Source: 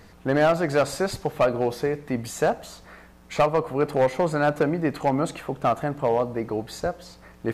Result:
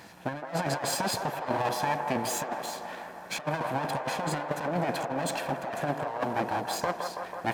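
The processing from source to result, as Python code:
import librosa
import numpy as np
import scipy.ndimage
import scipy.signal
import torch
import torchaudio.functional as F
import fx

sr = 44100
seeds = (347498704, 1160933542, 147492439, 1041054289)

p1 = fx.lower_of_two(x, sr, delay_ms=1.2)
p2 = scipy.signal.sosfilt(scipy.signal.butter(2, 200.0, 'highpass', fs=sr, output='sos'), p1)
p3 = fx.over_compress(p2, sr, threshold_db=-30.0, ratio=-0.5)
y = p3 + fx.echo_wet_bandpass(p3, sr, ms=164, feedback_pct=76, hz=820.0, wet_db=-5, dry=0)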